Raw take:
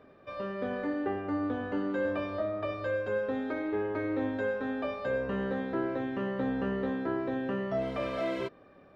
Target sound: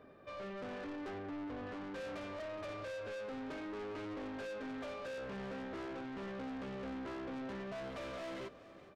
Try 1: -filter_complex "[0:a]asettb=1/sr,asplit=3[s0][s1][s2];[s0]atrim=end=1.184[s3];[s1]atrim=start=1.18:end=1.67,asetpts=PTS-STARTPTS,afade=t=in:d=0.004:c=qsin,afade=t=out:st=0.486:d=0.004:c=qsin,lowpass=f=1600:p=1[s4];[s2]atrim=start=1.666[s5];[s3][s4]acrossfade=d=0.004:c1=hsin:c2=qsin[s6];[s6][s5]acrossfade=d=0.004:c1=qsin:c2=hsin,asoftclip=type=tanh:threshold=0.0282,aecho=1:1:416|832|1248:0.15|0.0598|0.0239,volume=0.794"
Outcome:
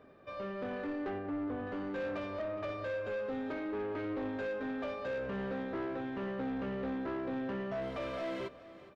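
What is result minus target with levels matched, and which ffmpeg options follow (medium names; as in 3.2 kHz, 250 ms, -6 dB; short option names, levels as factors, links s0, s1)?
saturation: distortion -6 dB
-filter_complex "[0:a]asettb=1/sr,asplit=3[s0][s1][s2];[s0]atrim=end=1.184[s3];[s1]atrim=start=1.18:end=1.67,asetpts=PTS-STARTPTS,afade=t=in:d=0.004:c=qsin,afade=t=out:st=0.486:d=0.004:c=qsin,lowpass=f=1600:p=1[s4];[s2]atrim=start=1.666[s5];[s3][s4]acrossfade=d=0.004:c1=hsin:c2=qsin[s6];[s6][s5]acrossfade=d=0.004:c1=qsin:c2=hsin,asoftclip=type=tanh:threshold=0.01,aecho=1:1:416|832|1248:0.15|0.0598|0.0239,volume=0.794"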